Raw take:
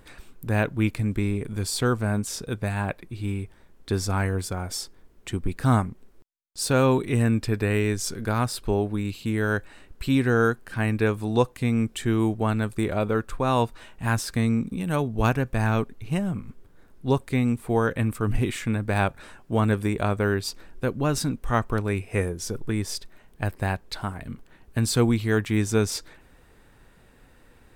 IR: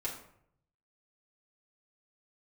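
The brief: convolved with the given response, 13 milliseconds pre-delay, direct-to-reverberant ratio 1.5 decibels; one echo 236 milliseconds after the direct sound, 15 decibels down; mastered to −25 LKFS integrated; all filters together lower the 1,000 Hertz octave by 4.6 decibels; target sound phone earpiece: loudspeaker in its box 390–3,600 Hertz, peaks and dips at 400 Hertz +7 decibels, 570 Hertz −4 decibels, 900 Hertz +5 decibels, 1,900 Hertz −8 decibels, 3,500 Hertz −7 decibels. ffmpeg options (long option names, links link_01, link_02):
-filter_complex "[0:a]equalizer=frequency=1000:width_type=o:gain=-8,aecho=1:1:236:0.178,asplit=2[link_01][link_02];[1:a]atrim=start_sample=2205,adelay=13[link_03];[link_02][link_03]afir=irnorm=-1:irlink=0,volume=-3.5dB[link_04];[link_01][link_04]amix=inputs=2:normalize=0,highpass=390,equalizer=frequency=400:width_type=q:width=4:gain=7,equalizer=frequency=570:width_type=q:width=4:gain=-4,equalizer=frequency=900:width_type=q:width=4:gain=5,equalizer=frequency=1900:width_type=q:width=4:gain=-8,equalizer=frequency=3500:width_type=q:width=4:gain=-7,lowpass=frequency=3600:width=0.5412,lowpass=frequency=3600:width=1.3066,volume=2.5dB"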